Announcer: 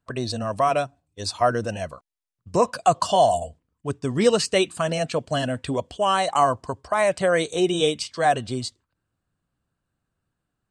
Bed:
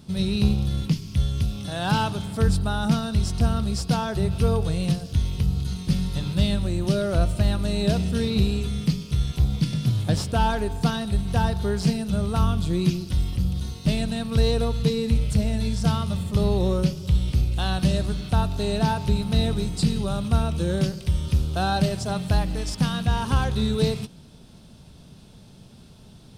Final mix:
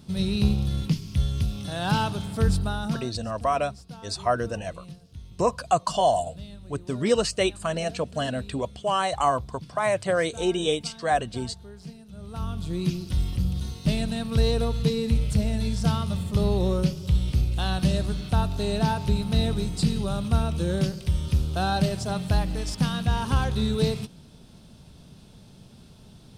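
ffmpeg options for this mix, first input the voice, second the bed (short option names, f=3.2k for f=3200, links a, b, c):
-filter_complex "[0:a]adelay=2850,volume=-3.5dB[a];[1:a]volume=16.5dB,afade=t=out:st=2.6:d=0.58:silence=0.125893,afade=t=in:st=12.14:d=1.07:silence=0.125893[b];[a][b]amix=inputs=2:normalize=0"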